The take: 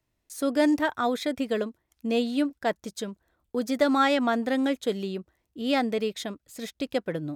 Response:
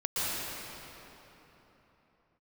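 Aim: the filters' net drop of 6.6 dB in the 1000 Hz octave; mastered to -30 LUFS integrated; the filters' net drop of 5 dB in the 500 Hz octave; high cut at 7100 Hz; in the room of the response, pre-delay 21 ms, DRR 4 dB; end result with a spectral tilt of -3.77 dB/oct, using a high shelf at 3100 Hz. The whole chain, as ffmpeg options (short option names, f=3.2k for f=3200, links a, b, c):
-filter_complex "[0:a]lowpass=7.1k,equalizer=f=500:t=o:g=-3.5,equalizer=f=1k:t=o:g=-8,highshelf=f=3.1k:g=-3.5,asplit=2[a][b];[1:a]atrim=start_sample=2205,adelay=21[c];[b][c]afir=irnorm=-1:irlink=0,volume=-13.5dB[d];[a][d]amix=inputs=2:normalize=0,volume=-1.5dB"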